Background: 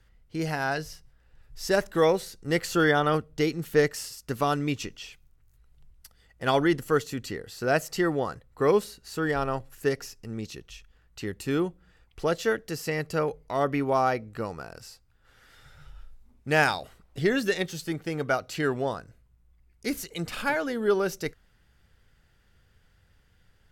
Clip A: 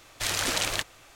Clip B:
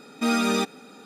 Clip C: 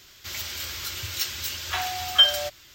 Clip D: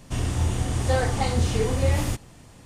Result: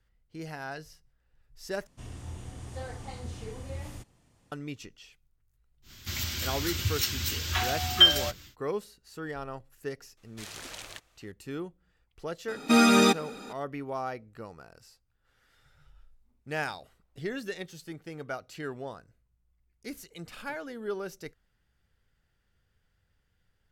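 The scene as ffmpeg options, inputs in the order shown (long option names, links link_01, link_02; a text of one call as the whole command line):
ffmpeg -i bed.wav -i cue0.wav -i cue1.wav -i cue2.wav -i cue3.wav -filter_complex "[0:a]volume=-10.5dB[link_01];[3:a]lowshelf=frequency=330:width_type=q:width=1.5:gain=9.5[link_02];[2:a]acontrast=48[link_03];[link_01]asplit=2[link_04][link_05];[link_04]atrim=end=1.874[link_06];[4:a]atrim=end=2.65,asetpts=PTS-STARTPTS,volume=-17dB[link_07];[link_05]atrim=start=4.516[link_08];[link_02]atrim=end=2.74,asetpts=PTS-STARTPTS,volume=-1dB,afade=type=in:duration=0.1,afade=type=out:start_time=2.64:duration=0.1,adelay=5820[link_09];[1:a]atrim=end=1.15,asetpts=PTS-STARTPTS,volume=-15.5dB,afade=type=in:duration=0.004:curve=hsin,afade=type=out:start_time=1.146:duration=0.004:curve=hsin,adelay=10170[link_10];[link_03]atrim=end=1.05,asetpts=PTS-STARTPTS,volume=-2.5dB,afade=type=in:duration=0.004:curve=hsin,afade=type=out:start_time=1.046:duration=0.004:curve=hsin,adelay=12480[link_11];[link_06][link_07]acrossfade=duration=0.004:curve1=hsin:curve2=hsin[link_12];[link_12][link_08]acrossfade=duration=0.004:curve1=hsin:curve2=hsin[link_13];[link_13][link_09][link_10][link_11]amix=inputs=4:normalize=0" out.wav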